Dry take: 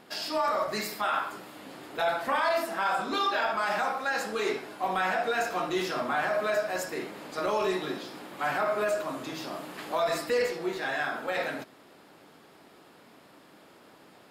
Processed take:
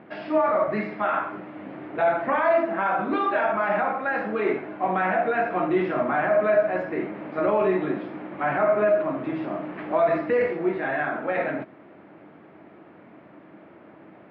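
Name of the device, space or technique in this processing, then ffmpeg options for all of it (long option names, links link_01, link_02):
bass cabinet: -af "highpass=76,equalizer=frequency=90:width_type=q:width=4:gain=10,equalizer=frequency=140:width_type=q:width=4:gain=6,equalizer=frequency=200:width_type=q:width=4:gain=7,equalizer=frequency=320:width_type=q:width=4:gain=9,equalizer=frequency=630:width_type=q:width=4:gain=6,equalizer=frequency=2200:width_type=q:width=4:gain=3,lowpass=frequency=2300:width=0.5412,lowpass=frequency=2300:width=1.3066,volume=2.5dB"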